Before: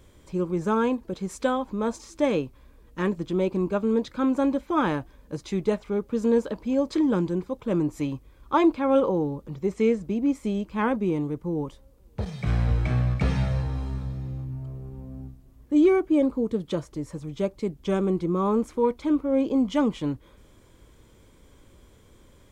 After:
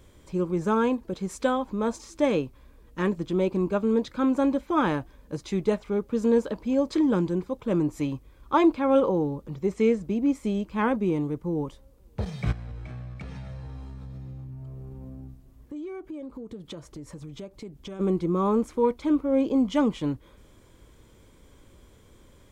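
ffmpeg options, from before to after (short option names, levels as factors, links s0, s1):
-filter_complex "[0:a]asplit=3[s0][s1][s2];[s0]afade=t=out:st=12.51:d=0.02[s3];[s1]acompressor=threshold=0.0158:ratio=6:attack=3.2:release=140:knee=1:detection=peak,afade=t=in:st=12.51:d=0.02,afade=t=out:st=17.99:d=0.02[s4];[s2]afade=t=in:st=17.99:d=0.02[s5];[s3][s4][s5]amix=inputs=3:normalize=0"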